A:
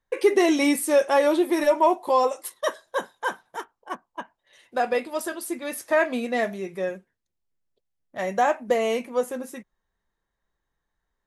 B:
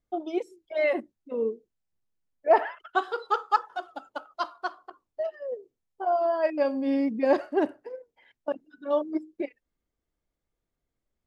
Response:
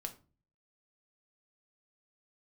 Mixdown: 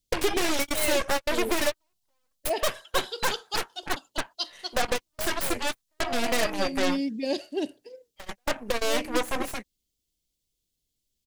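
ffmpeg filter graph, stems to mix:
-filter_complex "[0:a]highpass=frequency=350:poles=1,acompressor=threshold=-27dB:ratio=8,aeval=exprs='0.0668*(cos(1*acos(clip(val(0)/0.0668,-1,1)))-cos(1*PI/2))+0.00944*(cos(3*acos(clip(val(0)/0.0668,-1,1)))-cos(3*PI/2))+0.0299*(cos(6*acos(clip(val(0)/0.0668,-1,1)))-cos(6*PI/2))+0.0188*(cos(7*acos(clip(val(0)/0.0668,-1,1)))-cos(7*PI/2))':channel_layout=same,volume=2.5dB[link_01];[1:a]firequalizer=gain_entry='entry(180,0);entry(1200,-18);entry(2900,10);entry(4200,14)':delay=0.05:min_phase=1,volume=-1dB,asplit=2[link_02][link_03];[link_03]apad=whole_len=496705[link_04];[link_01][link_04]sidechaingate=range=-54dB:threshold=-56dB:ratio=16:detection=peak[link_05];[link_05][link_02]amix=inputs=2:normalize=0"

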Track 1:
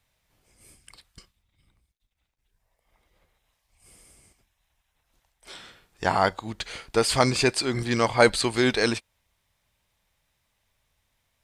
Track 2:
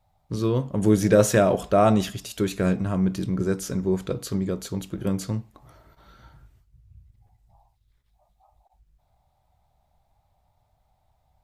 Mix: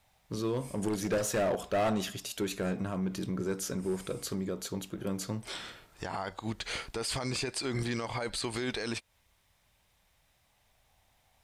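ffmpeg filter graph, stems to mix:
ffmpeg -i stem1.wav -i stem2.wav -filter_complex "[0:a]acompressor=threshold=-33dB:ratio=2,volume=3dB,asplit=2[link_01][link_02];[1:a]lowshelf=frequency=180:gain=-11,volume=19dB,asoftclip=hard,volume=-19dB,volume=-2dB[link_03];[link_02]apad=whole_len=504177[link_04];[link_03][link_04]sidechaincompress=threshold=-44dB:ratio=4:attack=16:release=1450[link_05];[link_01][link_05]amix=inputs=2:normalize=0,alimiter=level_in=0.5dB:limit=-24dB:level=0:latency=1:release=66,volume=-0.5dB" out.wav

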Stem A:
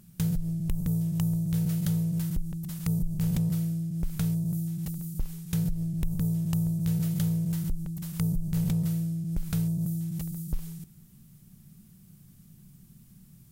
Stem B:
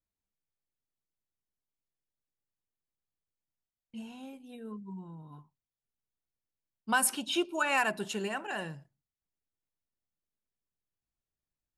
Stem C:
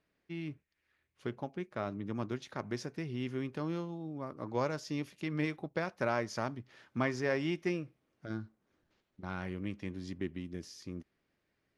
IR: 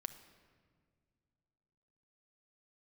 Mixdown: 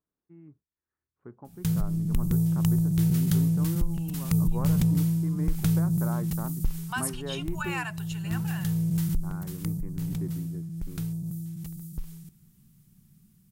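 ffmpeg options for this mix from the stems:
-filter_complex "[0:a]adelay=1450,volume=-4dB,afade=type=out:start_time=9.03:duration=0.72:silence=0.375837[link_01];[1:a]highpass=frequency=700:width=0.5412,highpass=frequency=700:width=1.3066,volume=-12dB,asplit=2[link_02][link_03];[2:a]lowpass=frequency=1300:width=0.5412,lowpass=frequency=1300:width=1.3066,volume=-9.5dB[link_04];[link_03]apad=whole_len=660145[link_05];[link_01][link_05]sidechaincompress=threshold=-50dB:ratio=8:attack=16:release=829[link_06];[link_06][link_02][link_04]amix=inputs=3:normalize=0,equalizer=frequency=590:width_type=o:width=0.54:gain=-6.5,dynaudnorm=framelen=250:gausssize=13:maxgain=8dB"

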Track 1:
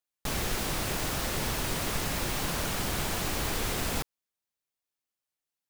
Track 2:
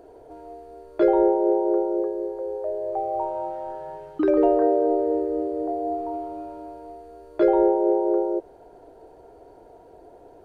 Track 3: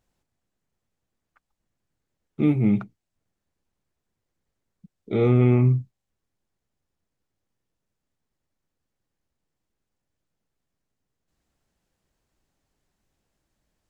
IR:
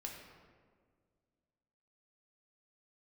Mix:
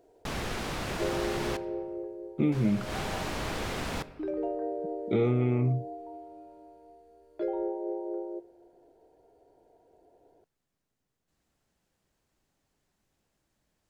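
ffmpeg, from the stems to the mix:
-filter_complex "[0:a]aemphasis=mode=reproduction:type=50fm,volume=-2.5dB,asplit=3[link_01][link_02][link_03];[link_01]atrim=end=1.57,asetpts=PTS-STARTPTS,afade=type=out:start_time=1.566:duration=0.004:curve=hsin[link_04];[link_02]atrim=start=1.57:end=2.52,asetpts=PTS-STARTPTS,volume=0[link_05];[link_03]atrim=start=2.52,asetpts=PTS-STARTPTS,afade=type=in:duration=0.004:curve=hsin[link_06];[link_04][link_05][link_06]concat=n=3:v=0:a=1,asplit=2[link_07][link_08];[link_08]volume=-8dB[link_09];[1:a]equalizer=frequency=1200:width_type=o:width=0.57:gain=-8,volume=-14dB,asplit=2[link_10][link_11];[link_11]volume=-16dB[link_12];[2:a]acompressor=threshold=-23dB:ratio=4,volume=0.5dB,asplit=2[link_13][link_14];[link_14]apad=whole_len=251252[link_15];[link_07][link_15]sidechaincompress=threshold=-40dB:ratio=8:attack=16:release=148[link_16];[3:a]atrim=start_sample=2205[link_17];[link_09][link_12]amix=inputs=2:normalize=0[link_18];[link_18][link_17]afir=irnorm=-1:irlink=0[link_19];[link_16][link_10][link_13][link_19]amix=inputs=4:normalize=0,lowshelf=frequency=64:gain=-6.5"

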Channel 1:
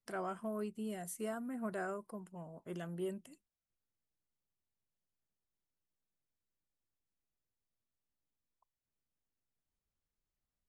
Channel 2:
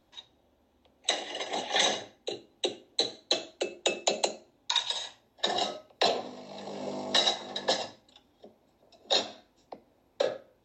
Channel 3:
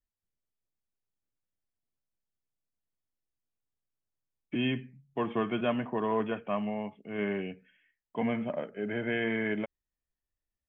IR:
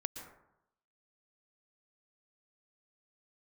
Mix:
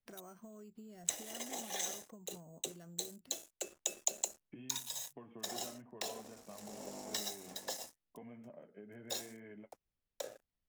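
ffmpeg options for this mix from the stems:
-filter_complex "[0:a]highshelf=frequency=5300:gain=-8,acompressor=threshold=-49dB:ratio=2.5,acrusher=samples=6:mix=1:aa=0.000001,volume=1dB[link_01];[1:a]acompressor=threshold=-30dB:ratio=5,aeval=exprs='sgn(val(0))*max(abs(val(0))-0.00422,0)':channel_layout=same,aexciter=amount=6.9:drive=5:freq=5800,volume=-9.5dB[link_02];[2:a]lowpass=2200,flanger=delay=7.2:depth=4.6:regen=-41:speed=1.9:shape=sinusoidal,volume=-6dB[link_03];[link_01][link_03]amix=inputs=2:normalize=0,equalizer=frequency=1200:width_type=o:width=1.8:gain=-4.5,acompressor=threshold=-49dB:ratio=16,volume=0dB[link_04];[link_02][link_04]amix=inputs=2:normalize=0"

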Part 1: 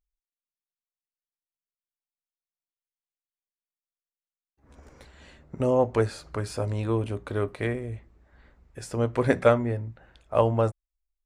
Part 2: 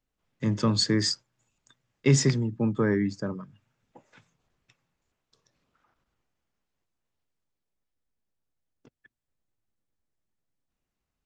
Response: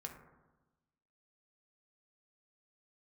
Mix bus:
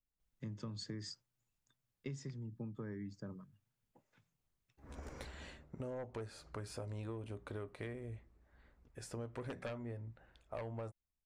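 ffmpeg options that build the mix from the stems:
-filter_complex "[0:a]aeval=exprs='0.562*sin(PI/2*2.82*val(0)/0.562)':channel_layout=same,adelay=200,volume=-10.5dB,afade=type=out:start_time=5.29:duration=0.42:silence=0.237137[link_01];[1:a]lowshelf=frequency=150:gain=11,volume=-17.5dB[link_02];[link_01][link_02]amix=inputs=2:normalize=0,acompressor=threshold=-41dB:ratio=10"

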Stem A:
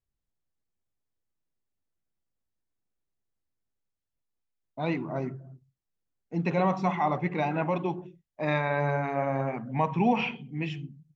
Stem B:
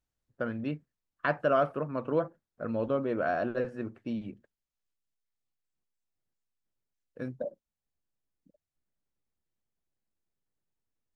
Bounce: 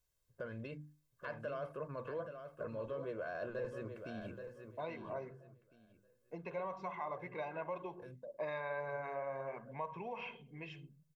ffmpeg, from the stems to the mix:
ffmpeg -i stem1.wav -i stem2.wav -filter_complex "[0:a]acompressor=threshold=-33dB:ratio=6,bandpass=frequency=860:width_type=q:width=0.57:csg=0,volume=-4.5dB,asplit=2[link_01][link_02];[1:a]bandreject=frequency=50:width_type=h:width=6,bandreject=frequency=100:width_type=h:width=6,bandreject=frequency=150:width_type=h:width=6,bandreject=frequency=200:width_type=h:width=6,bandreject=frequency=250:width_type=h:width=6,bandreject=frequency=300:width_type=h:width=6,acompressor=threshold=-38dB:ratio=3,alimiter=level_in=11.5dB:limit=-24dB:level=0:latency=1:release=17,volume=-11.5dB,volume=-0.5dB,asplit=2[link_03][link_04];[link_04]volume=-8dB[link_05];[link_02]apad=whole_len=491893[link_06];[link_03][link_06]sidechaincompress=threshold=-52dB:ratio=8:attack=16:release=1090[link_07];[link_05]aecho=0:1:828|1656|2484|3312:1|0.25|0.0625|0.0156[link_08];[link_01][link_07][link_08]amix=inputs=3:normalize=0,highshelf=frequency=4800:gain=8.5,aecho=1:1:1.9:0.59" out.wav

